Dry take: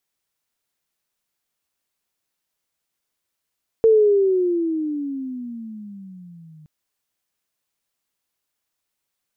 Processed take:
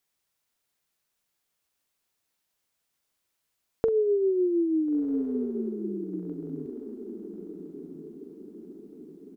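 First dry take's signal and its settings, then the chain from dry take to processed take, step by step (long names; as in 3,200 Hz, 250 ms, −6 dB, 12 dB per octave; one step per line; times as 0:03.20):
pitch glide with a swell sine, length 2.82 s, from 453 Hz, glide −19 semitones, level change −33 dB, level −9.5 dB
downward compressor, threshold −23 dBFS
double-tracking delay 44 ms −13 dB
on a send: feedback delay with all-pass diffusion 1,413 ms, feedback 51%, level −10.5 dB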